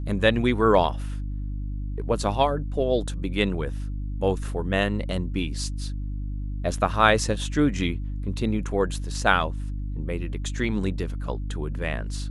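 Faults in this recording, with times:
mains hum 50 Hz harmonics 6 −30 dBFS

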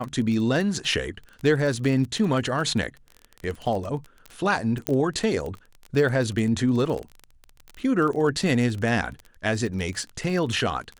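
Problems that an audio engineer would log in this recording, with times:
surface crackle 25 per second −29 dBFS
0:04.87: click −8 dBFS

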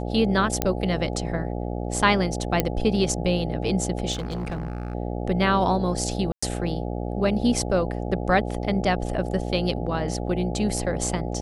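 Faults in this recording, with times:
mains buzz 60 Hz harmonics 14 −29 dBFS
0:00.62: click −6 dBFS
0:02.60: click −5 dBFS
0:04.12–0:04.95: clipping −25.5 dBFS
0:06.32–0:06.42: drop-out 105 ms

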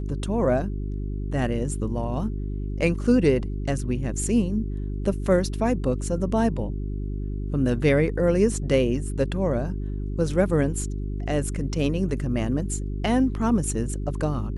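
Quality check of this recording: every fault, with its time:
mains hum 50 Hz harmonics 8 −29 dBFS

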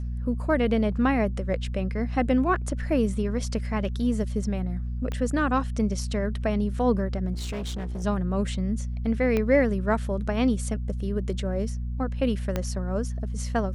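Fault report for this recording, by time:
mains hum 60 Hz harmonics 4 −30 dBFS
0:05.12: click −19 dBFS
0:07.33–0:08.04: clipping −28.5 dBFS
0:09.37: click −14 dBFS
0:12.56: click −13 dBFS

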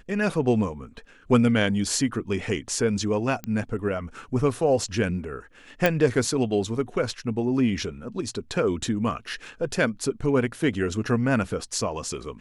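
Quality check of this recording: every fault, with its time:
0:03.44: click −17 dBFS
0:05.86: click

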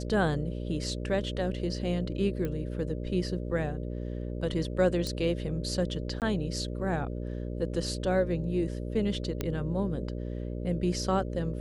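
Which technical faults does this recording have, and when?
mains buzz 60 Hz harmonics 10 −35 dBFS
0:02.45: click −21 dBFS
0:05.07: click −20 dBFS
0:06.20–0:06.22: drop-out 18 ms
0:09.41: click −16 dBFS

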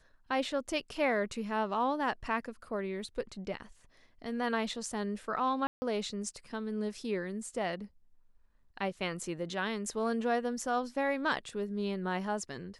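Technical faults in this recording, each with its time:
0:05.67–0:05.82: drop-out 150 ms

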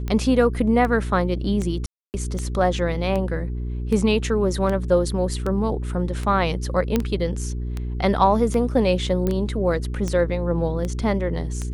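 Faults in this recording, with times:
mains hum 60 Hz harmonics 7 −27 dBFS
scratch tick 78 rpm −15 dBFS
0:01.86–0:02.14: drop-out 279 ms
0:06.96: click −7 dBFS
0:09.27: click −12 dBFS

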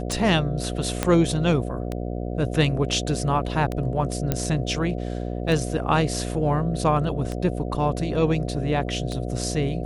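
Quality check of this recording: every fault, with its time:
mains buzz 60 Hz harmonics 12 −29 dBFS
scratch tick 33 1/3 rpm
0:01.03: click −7 dBFS
0:04.32: click −8 dBFS
0:05.48: drop-out 2.1 ms

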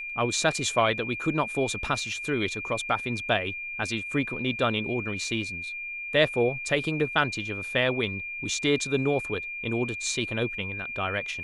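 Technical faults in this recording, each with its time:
whistle 2,400 Hz −33 dBFS

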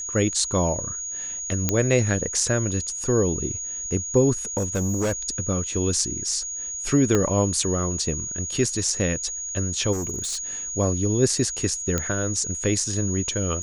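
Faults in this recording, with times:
whistle 6,700 Hz −29 dBFS
0:01.69: click −5 dBFS
0:04.57–0:05.13: clipping −20 dBFS
0:07.15: click −8 dBFS
0:09.92–0:10.38: clipping −24.5 dBFS
0:11.98: click −9 dBFS

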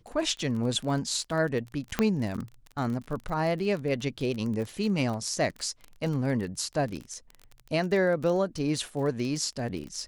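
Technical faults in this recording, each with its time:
surface crackle 32 per second −33 dBFS
0:01.99: click −10 dBFS

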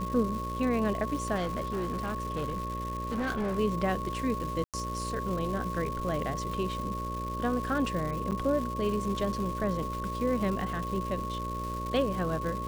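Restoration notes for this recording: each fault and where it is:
mains buzz 60 Hz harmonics 10 −37 dBFS
surface crackle 470 per second −36 dBFS
whistle 1,100 Hz −35 dBFS
0:01.35–0:03.59: clipping −27.5 dBFS
0:04.64–0:04.74: drop-out 97 ms
0:08.31–0:08.32: drop-out 8.7 ms

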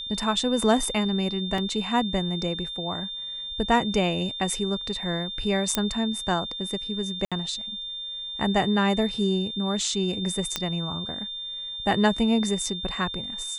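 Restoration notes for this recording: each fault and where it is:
whistle 3,600 Hz −32 dBFS
0:01.58: drop-out 2.6 ms
0:05.75: click −5 dBFS
0:07.25–0:07.32: drop-out 66 ms
0:10.56: click −9 dBFS

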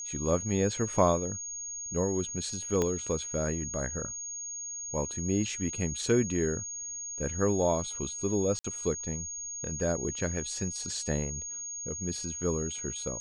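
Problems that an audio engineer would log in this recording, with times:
whistle 6,600 Hz −36 dBFS
0:02.82: click −16 dBFS
0:08.59–0:08.64: drop-out 54 ms

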